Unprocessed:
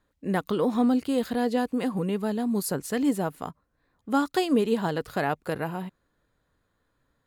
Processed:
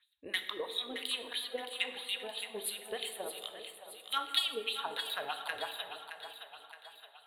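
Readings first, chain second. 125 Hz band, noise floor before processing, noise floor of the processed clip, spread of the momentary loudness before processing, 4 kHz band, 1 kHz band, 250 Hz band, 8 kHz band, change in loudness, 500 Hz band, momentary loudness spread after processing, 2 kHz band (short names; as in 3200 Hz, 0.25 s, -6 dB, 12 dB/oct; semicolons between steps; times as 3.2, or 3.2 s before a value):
under -30 dB, -74 dBFS, -60 dBFS, 8 LU, +7.0 dB, -10.5 dB, -29.0 dB, -4.0 dB, -10.0 dB, -14.5 dB, 15 LU, -3.0 dB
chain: LFO band-pass sine 3 Hz 420–6100 Hz; EQ curve 100 Hz 0 dB, 160 Hz -25 dB, 270 Hz -20 dB, 450 Hz -18 dB, 1500 Hz -6 dB, 3800 Hz +13 dB, 5500 Hz -26 dB, 9600 Hz +13 dB; reverb removal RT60 0.55 s; in parallel at +2.5 dB: compressor, threshold -48 dBFS, peak gain reduction 16.5 dB; on the sum: soft clip -22.5 dBFS, distortion -24 dB; transient shaper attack +6 dB, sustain -1 dB; on a send: split-band echo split 600 Hz, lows 0.337 s, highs 0.619 s, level -9 dB; on the sum: plate-style reverb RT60 1.7 s, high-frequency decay 0.45×, DRR 6.5 dB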